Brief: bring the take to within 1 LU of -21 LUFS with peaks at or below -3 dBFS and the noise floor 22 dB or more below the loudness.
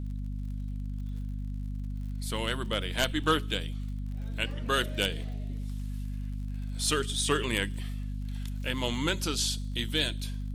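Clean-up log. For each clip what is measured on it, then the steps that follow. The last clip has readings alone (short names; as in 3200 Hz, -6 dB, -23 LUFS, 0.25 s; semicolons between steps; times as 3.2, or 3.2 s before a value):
ticks 58/s; hum 50 Hz; harmonics up to 250 Hz; hum level -32 dBFS; loudness -32.0 LUFS; peak -12.5 dBFS; loudness target -21.0 LUFS
-> de-click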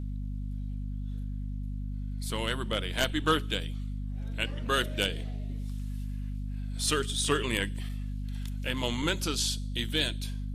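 ticks 0.28/s; hum 50 Hz; harmonics up to 250 Hz; hum level -32 dBFS
-> notches 50/100/150/200/250 Hz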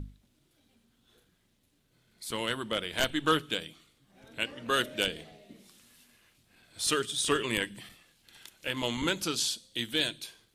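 hum none; loudness -30.5 LUFS; peak -13.0 dBFS; loudness target -21.0 LUFS
-> gain +9.5 dB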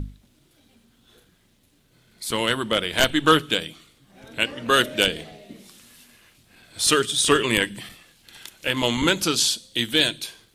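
loudness -21.0 LUFS; peak -3.5 dBFS; noise floor -61 dBFS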